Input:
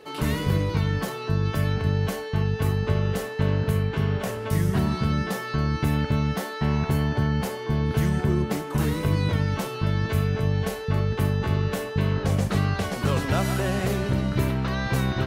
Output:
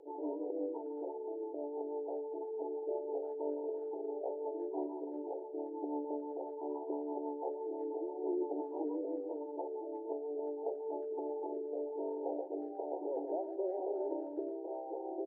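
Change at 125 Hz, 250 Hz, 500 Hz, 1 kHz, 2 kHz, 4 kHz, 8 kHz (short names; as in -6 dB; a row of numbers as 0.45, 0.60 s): under -40 dB, -15.0 dB, -6.5 dB, -12.0 dB, under -40 dB, under -40 dB, under -40 dB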